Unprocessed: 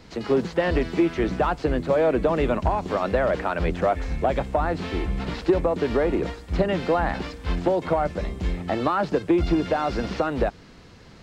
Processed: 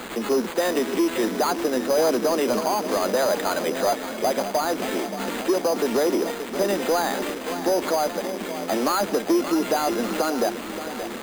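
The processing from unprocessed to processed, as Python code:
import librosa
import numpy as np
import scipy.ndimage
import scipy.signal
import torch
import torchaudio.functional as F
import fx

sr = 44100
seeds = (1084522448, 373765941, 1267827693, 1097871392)

y = x + 0.5 * 10.0 ** (-30.0 / 20.0) * np.sign(x)
y = scipy.signal.sosfilt(scipy.signal.ellip(4, 1.0, 40, 210.0, 'highpass', fs=sr, output='sos'), y)
y = 10.0 ** (-16.0 / 20.0) * np.tanh(y / 10.0 ** (-16.0 / 20.0))
y = fx.echo_feedback(y, sr, ms=577, feedback_pct=59, wet_db=-11.0)
y = np.repeat(y[::8], 8)[:len(y)]
y = y * 10.0 ** (1.5 / 20.0)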